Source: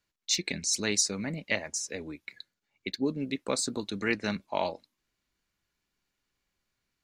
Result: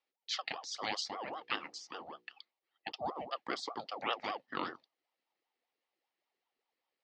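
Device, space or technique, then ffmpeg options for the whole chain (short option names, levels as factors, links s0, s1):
voice changer toy: -filter_complex "[0:a]aeval=exprs='val(0)*sin(2*PI*640*n/s+640*0.5/5.1*sin(2*PI*5.1*n/s))':c=same,highpass=410,equalizer=f=420:t=q:w=4:g=-5,equalizer=f=620:t=q:w=4:g=-8,equalizer=f=1000:t=q:w=4:g=-7,equalizer=f=1500:t=q:w=4:g=-10,equalizer=f=2500:t=q:w=4:g=-5,equalizer=f=3500:t=q:w=4:g=-7,lowpass=f=4000:w=0.5412,lowpass=f=4000:w=1.3066,asettb=1/sr,asplit=3[s0][s1][s2];[s0]atrim=end=1.244[s3];[s1]atrim=start=1.24:end=2.92,asetpts=PTS-STARTPTS,afade=t=in:d=0.004:c=qsin,afade=t=out:st=1.676:d=0.004:c=qsin,bandreject=f=60:t=h:w=6,bandreject=f=120:t=h:w=6,bandreject=f=180:t=h:w=6,bandreject=f=240:t=h:w=6,bandreject=f=300:t=h:w=6,bandreject=f=360:t=h:w=6,bandreject=f=420:t=h:w=6,bandreject=f=480:t=h:w=6[s4];[s2]atrim=start=2.916[s5];[s3][s4]acrossfade=d=0.004:c1=hsin:c2=qsin[s6];[s6][s5]acrossfade=d=0.004:c1=qsin:c2=hsin,volume=1.33"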